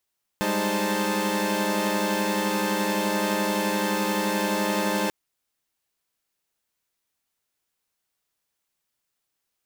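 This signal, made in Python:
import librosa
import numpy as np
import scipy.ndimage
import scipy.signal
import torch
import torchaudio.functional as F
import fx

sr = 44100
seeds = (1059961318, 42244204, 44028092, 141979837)

y = fx.chord(sr, length_s=4.69, notes=(55, 56, 63, 72, 81), wave='saw', level_db=-27.0)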